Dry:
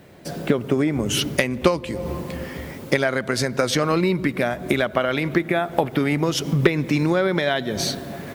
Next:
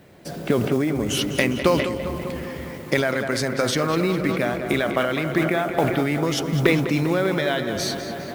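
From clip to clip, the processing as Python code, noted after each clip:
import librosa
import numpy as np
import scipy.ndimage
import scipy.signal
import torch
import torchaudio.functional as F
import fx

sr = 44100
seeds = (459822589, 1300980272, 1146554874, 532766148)

y = fx.mod_noise(x, sr, seeds[0], snr_db=26)
y = fx.echo_tape(y, sr, ms=201, feedback_pct=79, wet_db=-8, lp_hz=4000.0, drive_db=5.0, wow_cents=28)
y = fx.sustainer(y, sr, db_per_s=50.0)
y = y * librosa.db_to_amplitude(-2.5)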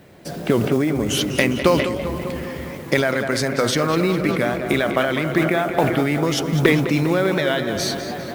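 y = fx.record_warp(x, sr, rpm=78.0, depth_cents=100.0)
y = y * librosa.db_to_amplitude(2.5)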